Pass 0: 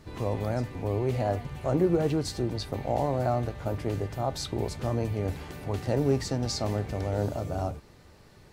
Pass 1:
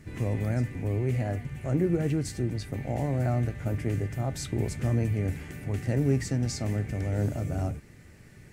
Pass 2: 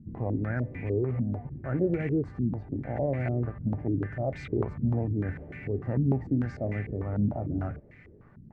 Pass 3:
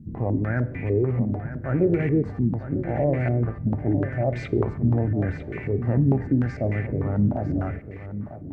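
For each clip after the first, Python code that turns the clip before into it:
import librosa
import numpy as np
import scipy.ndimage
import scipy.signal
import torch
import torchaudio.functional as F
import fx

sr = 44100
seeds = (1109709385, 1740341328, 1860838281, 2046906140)

y1 = fx.graphic_eq_10(x, sr, hz=(125, 250, 500, 1000, 2000, 4000, 8000), db=(5, 3, -3, -10, 9, -9, 5))
y1 = fx.rider(y1, sr, range_db=10, speed_s=2.0)
y1 = y1 * 10.0 ** (-2.0 / 20.0)
y2 = fx.filter_held_lowpass(y1, sr, hz=6.7, low_hz=220.0, high_hz=2200.0)
y2 = y2 * 10.0 ** (-3.5 / 20.0)
y3 = y2 + 10.0 ** (-11.5 / 20.0) * np.pad(y2, (int(951 * sr / 1000.0), 0))[:len(y2)]
y3 = fx.rev_plate(y3, sr, seeds[0], rt60_s=0.79, hf_ratio=0.9, predelay_ms=0, drr_db=16.0)
y3 = y3 * 10.0 ** (5.5 / 20.0)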